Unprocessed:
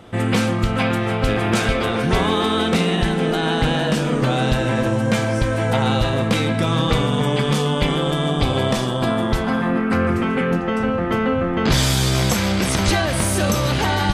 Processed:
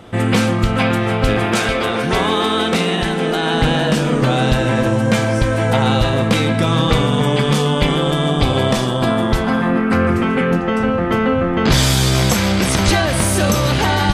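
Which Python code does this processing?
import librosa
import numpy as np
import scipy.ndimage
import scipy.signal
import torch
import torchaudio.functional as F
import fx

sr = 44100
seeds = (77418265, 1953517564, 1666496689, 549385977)

y = fx.low_shelf(x, sr, hz=180.0, db=-8.5, at=(1.45, 3.54))
y = F.gain(torch.from_numpy(y), 3.5).numpy()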